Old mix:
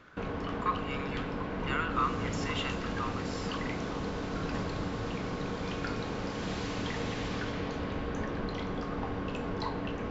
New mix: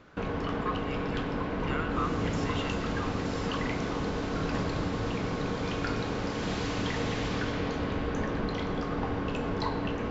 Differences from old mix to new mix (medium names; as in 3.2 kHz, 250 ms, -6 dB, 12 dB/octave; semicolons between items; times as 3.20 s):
speech -5.0 dB; reverb: on, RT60 1.3 s